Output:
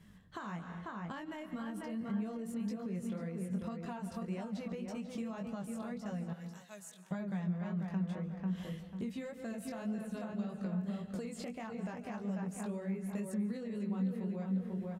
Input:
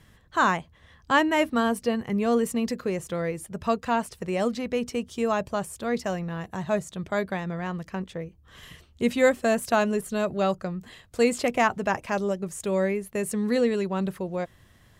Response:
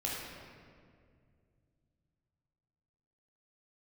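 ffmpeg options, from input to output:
-filter_complex "[0:a]flanger=delay=18:depth=4.9:speed=1.8,asettb=1/sr,asplit=3[link_01][link_02][link_03];[link_01]atrim=end=9.984[link_04];[link_02]atrim=start=9.98:end=10.66,asetpts=PTS-STARTPTS,afade=type=in:duration=0.004:curve=qsin,afade=type=out:start_time=0.676:duration=0.004:curve=qsin,acrossover=split=550|1700[link_05][link_06][link_07];[link_05]acompressor=threshold=-35dB:ratio=4[link_08];[link_06]acompressor=threshold=-38dB:ratio=4[link_09];[link_07]acompressor=threshold=-46dB:ratio=4[link_10];[link_08][link_09][link_10]amix=inputs=3:normalize=0[link_11];[link_03]atrim=start=10.656[link_12];[link_04][link_11]acrossfade=duration=0.004:curve1=hsin:curve2=qsin[link_13];[link_13][link_12]acrossfade=duration=0.004:curve1=qsin:curve2=hsin,asplit=2[link_14][link_15];[link_15]adelay=493,lowpass=frequency=2400:poles=1,volume=-6dB,asplit=2[link_16][link_17];[link_17]adelay=493,lowpass=frequency=2400:poles=1,volume=0.3,asplit=2[link_18][link_19];[link_19]adelay=493,lowpass=frequency=2400:poles=1,volume=0.3,asplit=2[link_20][link_21];[link_21]adelay=493,lowpass=frequency=2400:poles=1,volume=0.3[link_22];[link_14][link_16][link_18][link_20][link_22]amix=inputs=5:normalize=0,asoftclip=type=tanh:threshold=-13.5dB,asettb=1/sr,asplit=3[link_23][link_24][link_25];[link_23]atrim=end=6.334[link_26];[link_24]atrim=start=6.33:end=7.11,asetpts=PTS-STARTPTS,afade=type=in:duration=0.004:curve=qsin,afade=type=out:start_time=0.776:duration=0.004:curve=qsin,aderivative[link_27];[link_25]atrim=start=7.106[link_28];[link_26][link_27]acrossfade=duration=0.004:curve1=hsin:curve2=qsin[link_29];[link_29][link_28]acrossfade=duration=0.004:curve1=qsin:curve2=hsin,asplit=2[link_30][link_31];[1:a]atrim=start_sample=2205,afade=type=out:start_time=0.22:duration=0.01,atrim=end_sample=10143,adelay=140[link_32];[link_31][link_32]afir=irnorm=-1:irlink=0,volume=-18dB[link_33];[link_30][link_33]amix=inputs=2:normalize=0,alimiter=limit=-21.5dB:level=0:latency=1:release=147,acompressor=threshold=-38dB:ratio=6,equalizer=frequency=190:width_type=o:width=0.54:gain=14.5,volume=-5dB"

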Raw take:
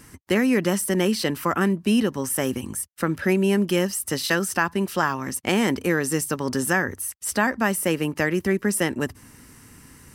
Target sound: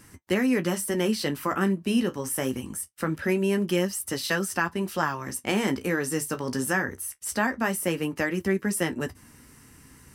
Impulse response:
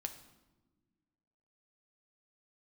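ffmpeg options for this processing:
-af "flanger=delay=9.7:depth=7.3:regen=-44:speed=0.24:shape=triangular"

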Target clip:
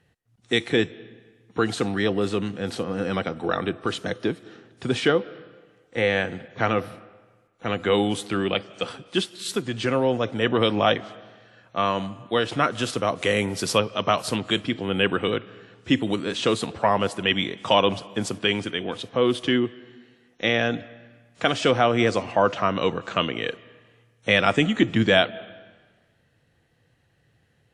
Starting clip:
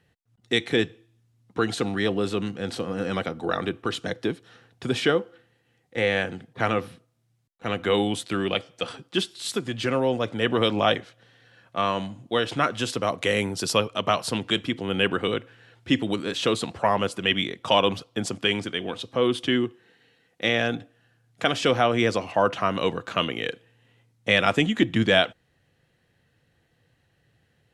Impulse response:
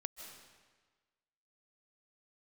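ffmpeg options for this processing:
-filter_complex "[0:a]asplit=2[link_01][link_02];[link_02]highshelf=frequency=5300:gain=-7.5[link_03];[1:a]atrim=start_sample=2205,lowpass=4200[link_04];[link_03][link_04]afir=irnorm=-1:irlink=0,volume=-10.5dB[link_05];[link_01][link_05]amix=inputs=2:normalize=0" -ar 32000 -c:a wmav2 -b:a 64k

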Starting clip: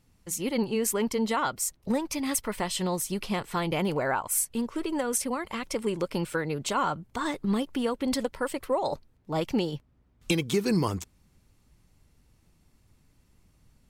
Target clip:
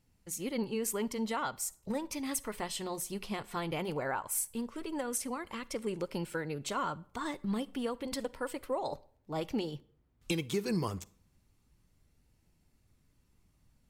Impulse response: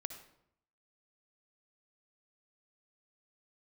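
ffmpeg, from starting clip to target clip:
-filter_complex "[0:a]flanger=delay=0.4:depth=2.4:regen=-82:speed=0.16:shape=sinusoidal,asplit=2[link_01][link_02];[1:a]atrim=start_sample=2205,asetrate=61740,aresample=44100,highshelf=frequency=11000:gain=9.5[link_03];[link_02][link_03]afir=irnorm=-1:irlink=0,volume=-7dB[link_04];[link_01][link_04]amix=inputs=2:normalize=0,volume=-4.5dB"

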